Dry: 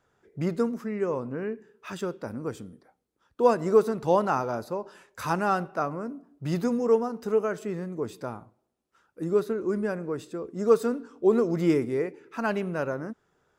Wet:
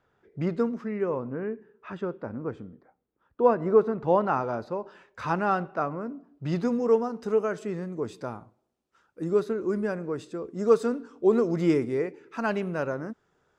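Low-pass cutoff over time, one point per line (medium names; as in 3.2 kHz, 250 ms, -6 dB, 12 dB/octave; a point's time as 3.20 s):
0.89 s 3.9 kHz
1.36 s 1.9 kHz
3.99 s 1.9 kHz
4.49 s 3.6 kHz
6.04 s 3.6 kHz
7.40 s 8 kHz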